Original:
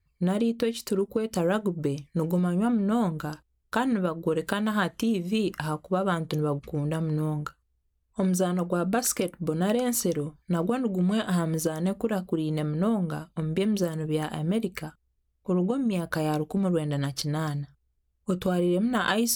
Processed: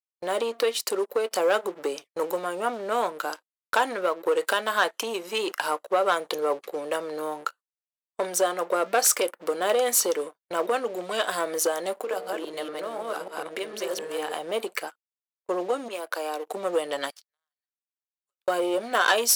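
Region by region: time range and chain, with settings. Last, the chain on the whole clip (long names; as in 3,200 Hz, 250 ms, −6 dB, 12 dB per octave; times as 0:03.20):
0:11.94–0:14.36: delay that plays each chunk backwards 149 ms, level 0 dB + hum removal 66.44 Hz, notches 11 + downward compressor 5 to 1, threshold −28 dBFS
0:15.88–0:16.47: Butterworth high-pass 200 Hz 72 dB per octave + downward compressor 2 to 1, threshold −37 dBFS
0:17.10–0:18.48: high-pass filter 1,300 Hz + downward compressor, threshold −52 dBFS
whole clip: leveller curve on the samples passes 2; high-pass filter 450 Hz 24 dB per octave; noise gate −43 dBFS, range −34 dB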